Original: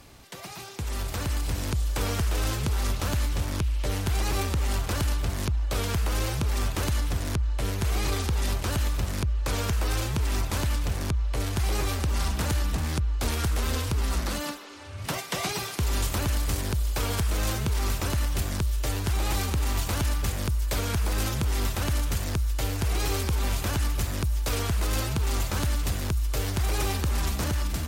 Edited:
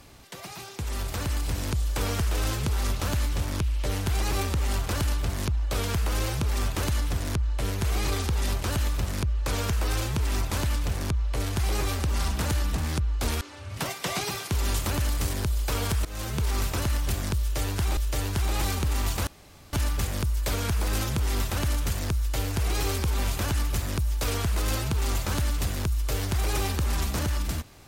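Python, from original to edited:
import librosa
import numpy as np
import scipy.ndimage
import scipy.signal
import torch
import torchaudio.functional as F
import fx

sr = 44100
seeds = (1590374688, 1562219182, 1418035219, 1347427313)

y = fx.edit(x, sr, fx.cut(start_s=13.41, length_s=1.28),
    fx.fade_in_from(start_s=17.33, length_s=0.36, floor_db=-17.5),
    fx.repeat(start_s=18.68, length_s=0.57, count=2),
    fx.insert_room_tone(at_s=19.98, length_s=0.46), tone=tone)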